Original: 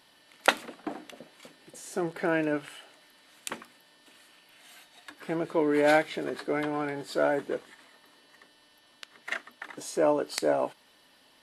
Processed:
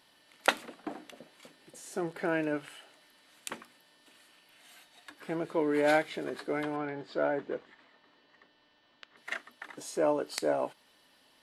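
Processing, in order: 6.76–9.17 air absorption 170 m; gain -3.5 dB

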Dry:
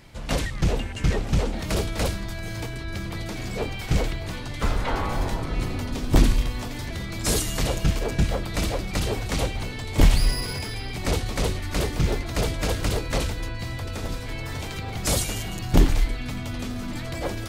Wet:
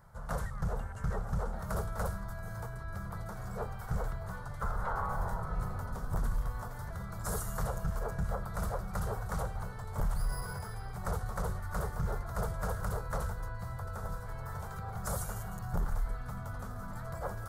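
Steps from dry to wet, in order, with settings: EQ curve 190 Hz 0 dB, 290 Hz -20 dB, 430 Hz -3 dB, 1400 Hz +7 dB, 2500 Hz -22 dB, 12000 Hz 0 dB; limiter -16.5 dBFS, peak gain reduction 10.5 dB; gain -8 dB

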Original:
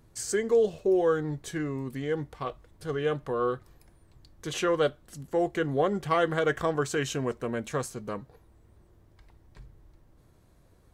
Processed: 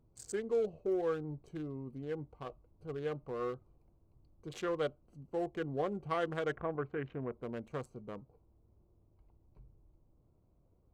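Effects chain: Wiener smoothing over 25 samples; 6.55–7.42 LPF 2200 Hz 24 dB/oct; gain -9 dB

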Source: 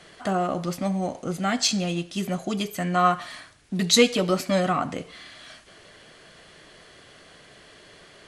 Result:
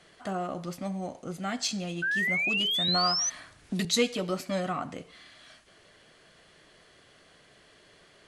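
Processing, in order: 2.02–3.3 painted sound rise 1500–6200 Hz -20 dBFS; 2.88–3.85 three-band squash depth 70%; gain -8 dB

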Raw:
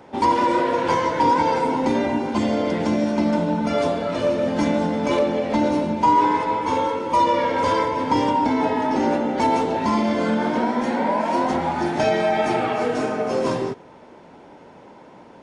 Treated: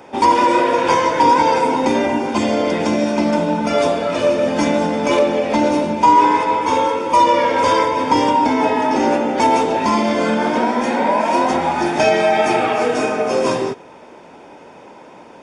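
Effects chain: tone controls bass -6 dB, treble +4 dB; notch 4000 Hz, Q 6.4; small resonant body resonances 2500/3700 Hz, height 11 dB, ringing for 40 ms; gain +5.5 dB

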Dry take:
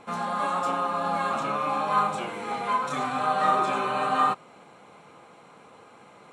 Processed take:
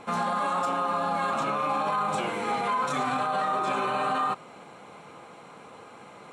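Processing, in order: limiter -23 dBFS, peak gain reduction 11.5 dB; gain +4 dB

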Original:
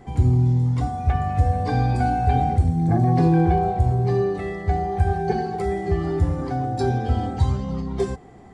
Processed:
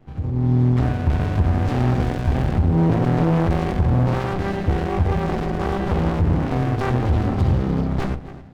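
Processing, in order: Chebyshev low-pass 3300 Hz, order 2; notches 60/120/180/240/300/360/420 Hz; limiter -16 dBFS, peak gain reduction 6.5 dB; AGC gain up to 14 dB; overloaded stage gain 9.5 dB; on a send: feedback echo 0.267 s, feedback 49%, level -17.5 dB; on the sum: running maximum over 65 samples; gain -3 dB

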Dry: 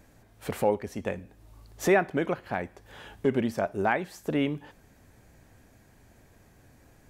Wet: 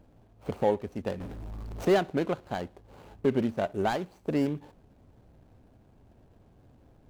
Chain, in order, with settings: median filter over 25 samples; 1.2–1.85 sample leveller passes 5

